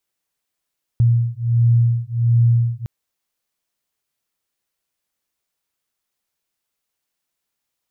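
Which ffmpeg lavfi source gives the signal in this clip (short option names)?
-f lavfi -i "aevalsrc='0.158*(sin(2*PI*117*t)+sin(2*PI*118.4*t))':d=1.86:s=44100"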